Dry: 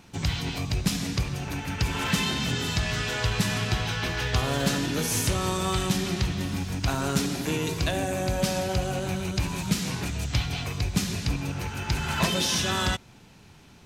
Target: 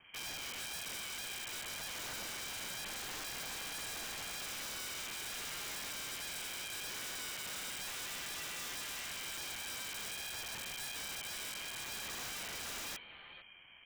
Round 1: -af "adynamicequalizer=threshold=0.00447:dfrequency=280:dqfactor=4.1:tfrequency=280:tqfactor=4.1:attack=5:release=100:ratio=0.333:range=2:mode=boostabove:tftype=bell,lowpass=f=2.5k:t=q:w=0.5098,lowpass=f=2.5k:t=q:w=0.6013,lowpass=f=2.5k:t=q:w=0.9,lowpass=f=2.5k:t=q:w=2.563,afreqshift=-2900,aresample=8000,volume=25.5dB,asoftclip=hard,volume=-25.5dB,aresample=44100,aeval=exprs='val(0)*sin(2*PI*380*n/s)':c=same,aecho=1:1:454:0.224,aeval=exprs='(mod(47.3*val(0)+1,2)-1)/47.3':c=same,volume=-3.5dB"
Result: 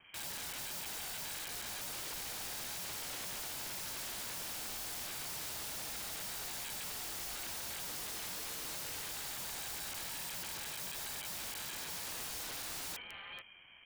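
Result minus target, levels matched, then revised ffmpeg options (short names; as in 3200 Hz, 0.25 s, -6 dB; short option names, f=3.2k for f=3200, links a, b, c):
overloaded stage: distortion -5 dB
-af "adynamicequalizer=threshold=0.00447:dfrequency=280:dqfactor=4.1:tfrequency=280:tqfactor=4.1:attack=5:release=100:ratio=0.333:range=2:mode=boostabove:tftype=bell,lowpass=f=2.5k:t=q:w=0.5098,lowpass=f=2.5k:t=q:w=0.6013,lowpass=f=2.5k:t=q:w=0.9,lowpass=f=2.5k:t=q:w=2.563,afreqshift=-2900,aresample=8000,volume=34.5dB,asoftclip=hard,volume=-34.5dB,aresample=44100,aeval=exprs='val(0)*sin(2*PI*380*n/s)':c=same,aecho=1:1:454:0.224,aeval=exprs='(mod(47.3*val(0)+1,2)-1)/47.3':c=same,volume=-3.5dB"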